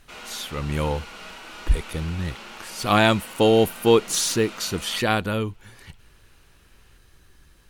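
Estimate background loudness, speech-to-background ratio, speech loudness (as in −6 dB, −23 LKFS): −39.5 LKFS, 16.5 dB, −23.0 LKFS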